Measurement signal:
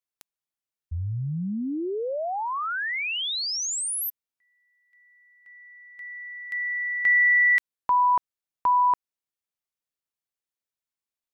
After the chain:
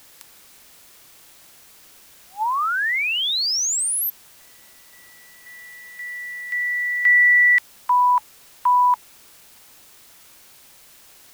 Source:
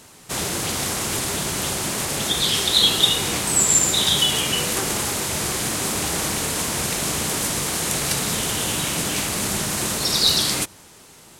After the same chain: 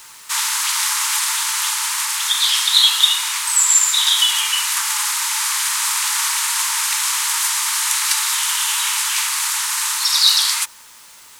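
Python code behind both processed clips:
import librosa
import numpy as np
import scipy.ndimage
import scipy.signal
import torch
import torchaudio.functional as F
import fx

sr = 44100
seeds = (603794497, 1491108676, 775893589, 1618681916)

p1 = scipy.signal.sosfilt(scipy.signal.cheby1(10, 1.0, 860.0, 'highpass', fs=sr, output='sos'), x)
p2 = fx.rider(p1, sr, range_db=5, speed_s=2.0)
p3 = p1 + F.gain(torch.from_numpy(p2), 0.0).numpy()
p4 = fx.quant_dither(p3, sr, seeds[0], bits=8, dither='triangular')
y = F.gain(torch.from_numpy(p4), -1.0).numpy()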